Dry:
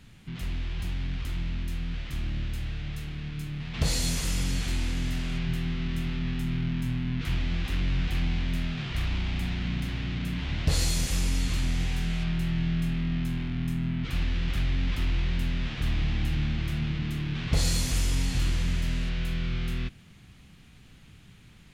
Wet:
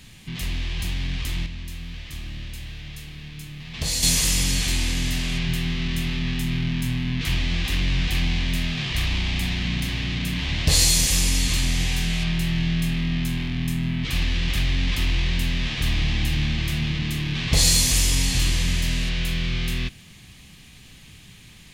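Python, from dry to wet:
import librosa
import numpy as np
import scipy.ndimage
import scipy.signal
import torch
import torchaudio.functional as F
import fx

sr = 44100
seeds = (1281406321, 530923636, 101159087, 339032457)

y = fx.comb_fb(x, sr, f0_hz=81.0, decay_s=1.5, harmonics='all', damping=0.0, mix_pct=60, at=(1.46, 4.03))
y = fx.high_shelf(y, sr, hz=2100.0, db=10.5)
y = fx.notch(y, sr, hz=1400.0, q=6.3)
y = F.gain(torch.from_numpy(y), 4.0).numpy()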